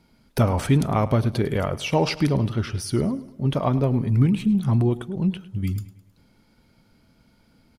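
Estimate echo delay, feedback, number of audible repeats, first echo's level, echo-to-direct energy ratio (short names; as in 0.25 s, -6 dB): 0.105 s, 46%, 3, -17.5 dB, -16.5 dB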